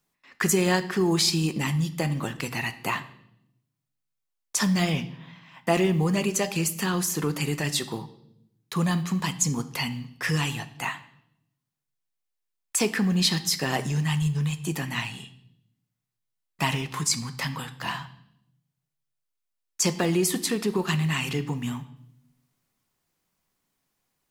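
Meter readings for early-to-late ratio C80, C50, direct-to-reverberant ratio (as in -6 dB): 18.0 dB, 15.5 dB, 10.5 dB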